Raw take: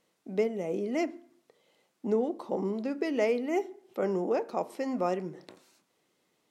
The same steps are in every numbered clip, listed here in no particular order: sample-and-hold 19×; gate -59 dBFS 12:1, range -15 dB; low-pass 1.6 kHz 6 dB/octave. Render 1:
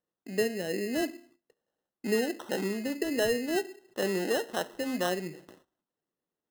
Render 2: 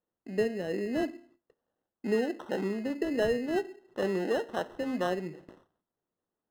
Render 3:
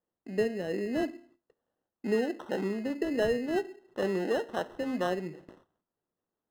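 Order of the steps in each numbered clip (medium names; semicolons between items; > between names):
low-pass > sample-and-hold > gate; sample-and-hold > gate > low-pass; sample-and-hold > low-pass > gate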